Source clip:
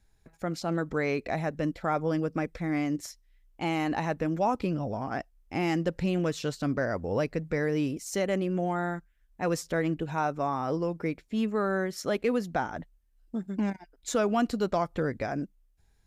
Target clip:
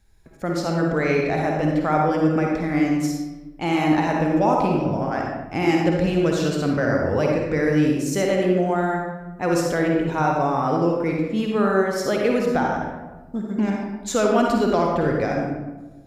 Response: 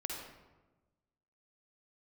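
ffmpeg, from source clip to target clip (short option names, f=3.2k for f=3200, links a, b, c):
-filter_complex "[1:a]atrim=start_sample=2205[a];[0:a][a]afir=irnorm=-1:irlink=0,volume=7.5dB"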